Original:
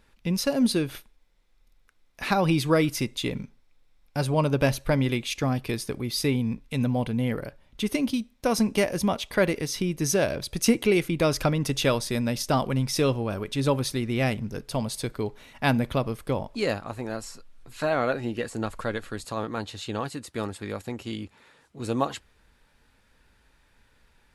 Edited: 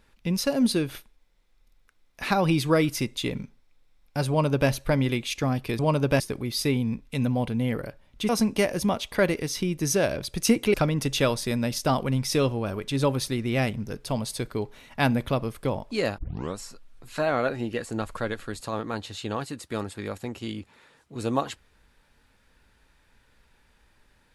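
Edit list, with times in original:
4.29–4.7 copy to 5.79
7.88–8.48 cut
10.93–11.38 cut
16.82 tape start 0.40 s

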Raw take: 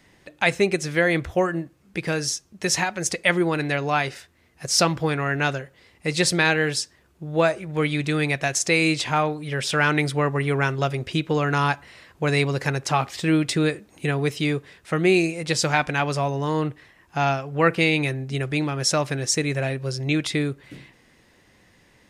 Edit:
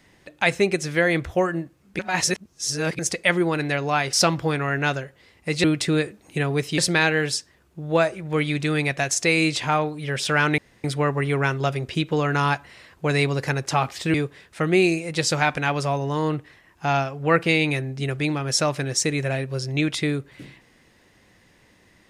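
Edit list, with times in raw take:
1.99–2.99 reverse
4.13–4.71 cut
10.02 insert room tone 0.26 s
13.32–14.46 move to 6.22

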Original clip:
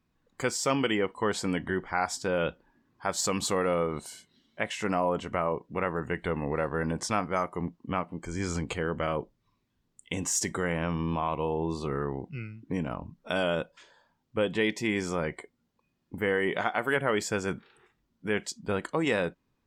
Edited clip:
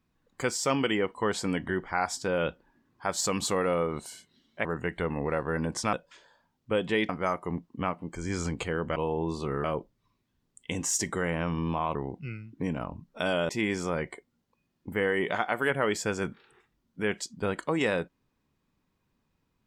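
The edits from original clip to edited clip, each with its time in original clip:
4.65–5.91 cut
11.37–12.05 move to 9.06
13.59–14.75 move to 7.19

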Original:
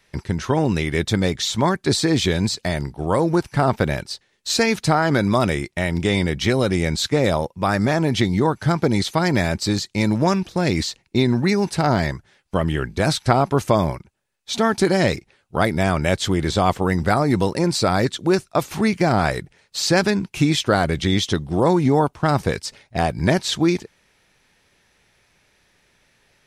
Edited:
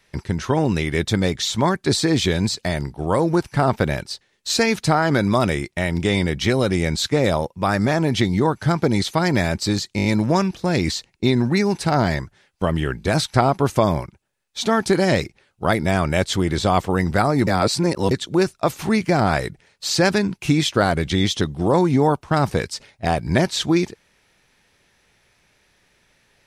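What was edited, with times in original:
9.97 stutter 0.02 s, 5 plays
17.39–18.03 reverse

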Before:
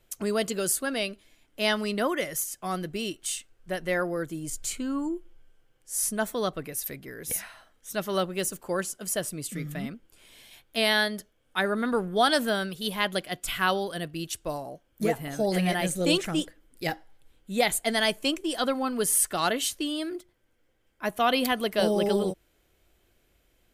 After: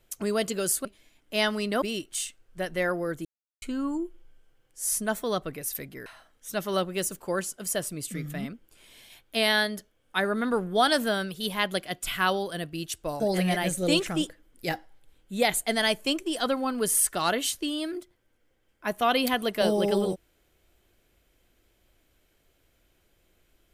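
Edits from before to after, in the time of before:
0.85–1.11 cut
2.08–2.93 cut
4.36–4.73 mute
7.17–7.47 cut
14.61–15.38 cut

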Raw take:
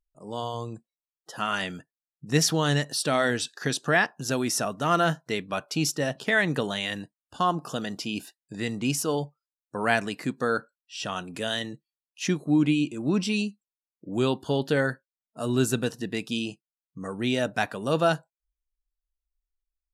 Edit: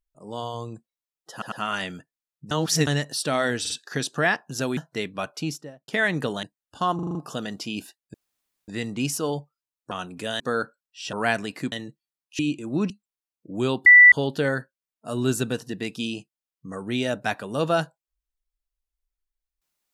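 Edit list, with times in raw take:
1.32 stutter 0.10 s, 3 plays
2.31–2.67 reverse
3.4 stutter 0.05 s, 3 plays
4.47–5.11 cut
5.61–6.22 studio fade out
6.77–7.02 cut
7.54 stutter 0.04 s, 6 plays
8.53 insert room tone 0.54 s
9.76–10.35 swap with 11.08–11.57
12.24–12.72 cut
13.23–13.48 cut
14.44 add tone 1970 Hz -7 dBFS 0.26 s

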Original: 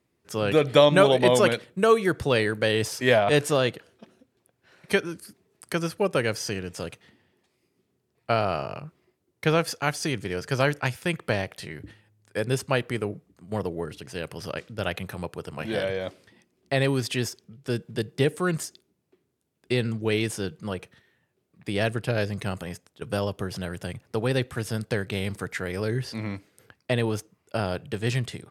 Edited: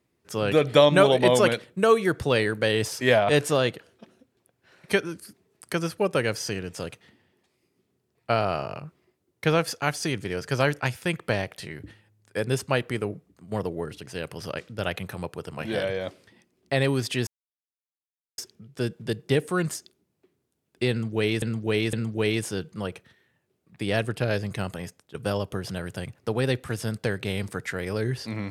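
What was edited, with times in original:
17.27 insert silence 1.11 s
19.8–20.31 loop, 3 plays

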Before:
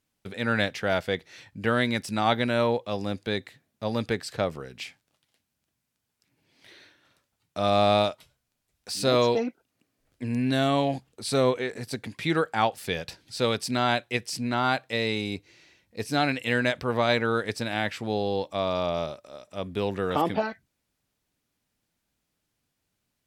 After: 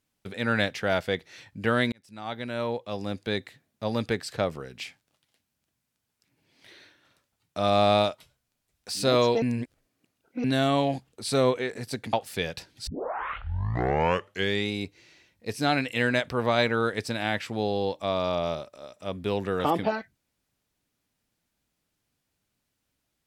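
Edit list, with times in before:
1.92–3.36 fade in
9.42–10.44 reverse
12.13–12.64 cut
13.38 tape start 1.84 s

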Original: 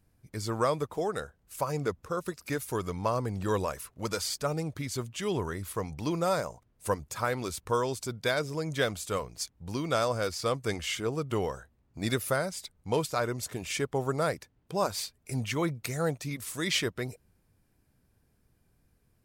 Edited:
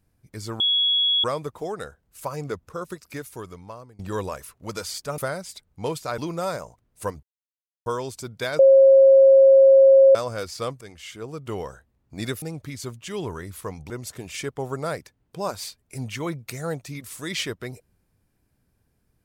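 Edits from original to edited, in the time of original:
0.6 add tone 3350 Hz -17.5 dBFS 0.64 s
2.25–3.35 fade out, to -24 dB
4.54–6.02 swap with 12.26–13.26
7.07–7.7 mute
8.43–9.99 bleep 540 Hz -9 dBFS
10.65–11.51 fade in, from -13.5 dB

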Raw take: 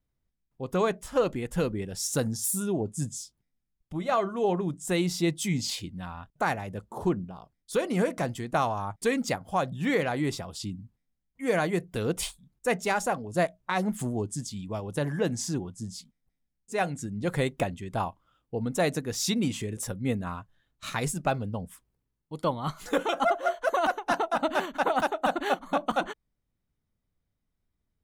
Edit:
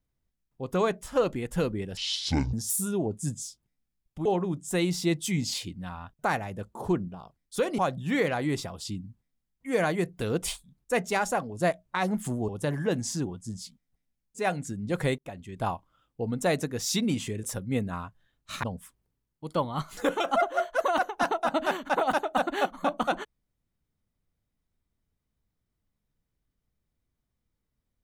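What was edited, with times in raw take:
1.97–2.28 speed 55%
4–4.42 cut
7.95–9.53 cut
14.23–14.82 cut
17.52–17.98 fade in
20.97–21.52 cut

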